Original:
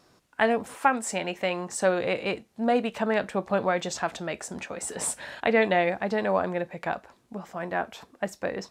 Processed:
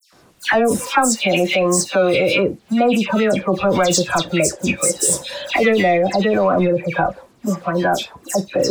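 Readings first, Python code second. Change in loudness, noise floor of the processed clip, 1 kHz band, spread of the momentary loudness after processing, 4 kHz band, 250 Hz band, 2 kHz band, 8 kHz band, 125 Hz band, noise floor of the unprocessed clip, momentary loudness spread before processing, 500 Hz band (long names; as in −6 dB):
+10.5 dB, −52 dBFS, +8.0 dB, 6 LU, +14.0 dB, +12.0 dB, +8.5 dB, +15.0 dB, +14.0 dB, −63 dBFS, 11 LU, +10.0 dB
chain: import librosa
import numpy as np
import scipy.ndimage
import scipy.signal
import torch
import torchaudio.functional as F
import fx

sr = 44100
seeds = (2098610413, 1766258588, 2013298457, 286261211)

p1 = fx.power_curve(x, sr, exponent=0.7)
p2 = fx.noise_reduce_blind(p1, sr, reduce_db=15)
p3 = fx.dispersion(p2, sr, late='lows', ms=131.0, hz=2600.0)
p4 = fx.over_compress(p3, sr, threshold_db=-25.0, ratio=-0.5)
p5 = p3 + (p4 * 10.0 ** (-2.0 / 20.0))
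y = p5 * 10.0 ** (3.5 / 20.0)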